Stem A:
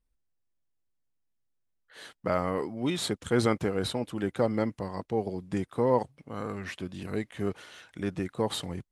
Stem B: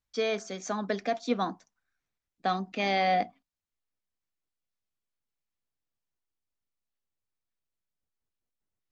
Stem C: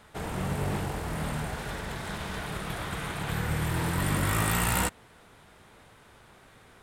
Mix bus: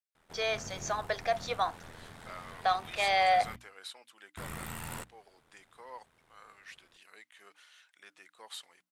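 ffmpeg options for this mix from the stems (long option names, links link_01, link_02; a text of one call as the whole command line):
ffmpeg -i stem1.wav -i stem2.wav -i stem3.wav -filter_complex "[0:a]highpass=1400,volume=-9dB[link_01];[1:a]highpass=frequency=580:width=0.5412,highpass=frequency=580:width=1.3066,adelay=200,volume=1.5dB[link_02];[2:a]aeval=exprs='val(0)*sin(2*PI*41*n/s)':channel_layout=same,asoftclip=type=tanh:threshold=-18dB,adelay=150,volume=-11dB,asplit=3[link_03][link_04][link_05];[link_03]atrim=end=3.56,asetpts=PTS-STARTPTS,afade=type=out:start_time=3.556:duration=0.004:curve=hsin[link_06];[link_04]atrim=start=3.56:end=4.37,asetpts=PTS-STARTPTS,volume=0[link_07];[link_05]atrim=start=4.37,asetpts=PTS-STARTPTS,afade=type=in:duration=0.004:curve=hsin[link_08];[link_06][link_07][link_08]concat=n=3:v=0:a=1[link_09];[link_01][link_02][link_09]amix=inputs=3:normalize=0,bandreject=frequency=60:width_type=h:width=6,bandreject=frequency=120:width_type=h:width=6,bandreject=frequency=180:width_type=h:width=6,bandreject=frequency=240:width_type=h:width=6,bandreject=frequency=300:width_type=h:width=6" out.wav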